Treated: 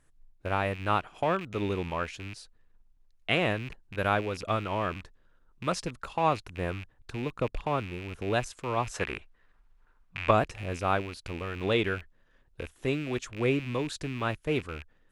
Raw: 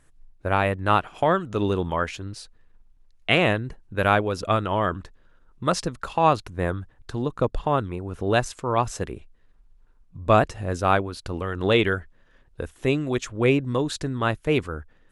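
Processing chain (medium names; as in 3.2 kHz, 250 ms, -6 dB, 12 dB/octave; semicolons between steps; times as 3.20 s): rattle on loud lows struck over -36 dBFS, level -24 dBFS; 8.94–10.31 s: peaking EQ 1.5 kHz +12 dB 2.7 oct; trim -7 dB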